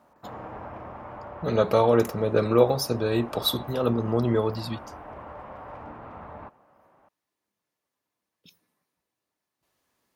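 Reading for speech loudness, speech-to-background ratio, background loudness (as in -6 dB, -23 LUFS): -24.0 LUFS, 17.5 dB, -41.5 LUFS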